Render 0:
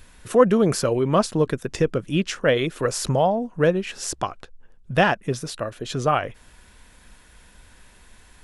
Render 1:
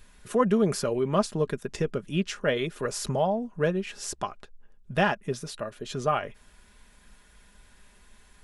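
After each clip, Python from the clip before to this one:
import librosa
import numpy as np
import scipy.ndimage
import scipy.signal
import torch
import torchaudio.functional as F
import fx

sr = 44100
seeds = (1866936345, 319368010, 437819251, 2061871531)

y = x + 0.41 * np.pad(x, (int(4.9 * sr / 1000.0), 0))[:len(x)]
y = y * librosa.db_to_amplitude(-6.5)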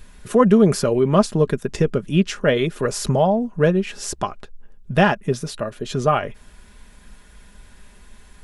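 y = fx.low_shelf(x, sr, hz=450.0, db=5.0)
y = y * librosa.db_to_amplitude(6.0)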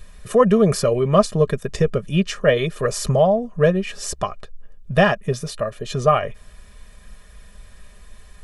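y = x + 0.62 * np.pad(x, (int(1.7 * sr / 1000.0), 0))[:len(x)]
y = y * librosa.db_to_amplitude(-1.0)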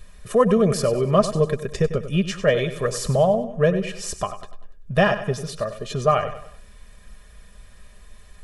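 y = fx.echo_feedback(x, sr, ms=97, feedback_pct=42, wet_db=-12.0)
y = y * librosa.db_to_amplitude(-2.5)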